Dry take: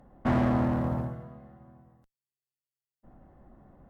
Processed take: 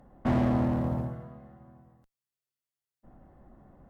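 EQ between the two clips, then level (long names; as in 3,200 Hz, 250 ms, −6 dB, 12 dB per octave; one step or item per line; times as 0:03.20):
dynamic equaliser 1,400 Hz, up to −5 dB, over −45 dBFS, Q 1.1
0.0 dB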